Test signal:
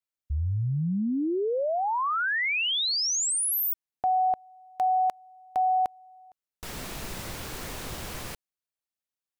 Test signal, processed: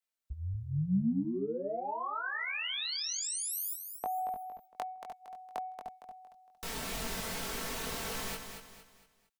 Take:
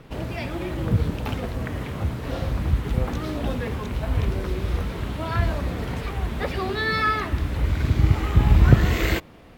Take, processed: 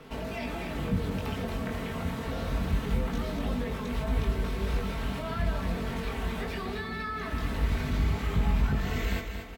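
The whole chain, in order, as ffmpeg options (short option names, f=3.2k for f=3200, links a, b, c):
-filter_complex "[0:a]lowshelf=f=230:g=-7,aecho=1:1:4.5:0.57,alimiter=limit=-16dB:level=0:latency=1:release=363,acrossover=split=210[a][b];[b]acompressor=threshold=-43dB:ratio=4:attack=25:release=21:knee=2.83:detection=peak[c];[a][c]amix=inputs=2:normalize=0,flanger=delay=20:depth=2.4:speed=0.24,aecho=1:1:230|460|690|920:0.422|0.16|0.0609|0.0231,volume=3.5dB"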